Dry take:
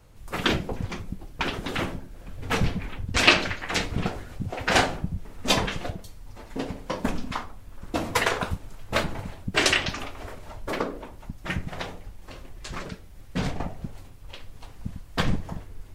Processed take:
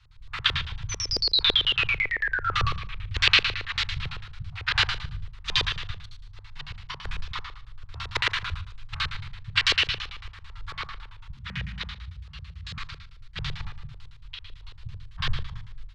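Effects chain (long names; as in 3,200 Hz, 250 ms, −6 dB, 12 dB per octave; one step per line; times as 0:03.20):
inverse Chebyshev band-stop filter 260–540 Hz, stop band 60 dB
0:00.89–0:02.67: sound drawn into the spectrogram fall 1,100–6,200 Hz −27 dBFS
four-comb reverb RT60 0.56 s, combs from 28 ms, DRR 0.5 dB
auto-filter low-pass square 9 Hz 440–3,900 Hz
on a send: single-tap delay 149 ms −23.5 dB
0:11.37–0:12.78: on the sum: frequency shifter +47 Hz
level −2.5 dB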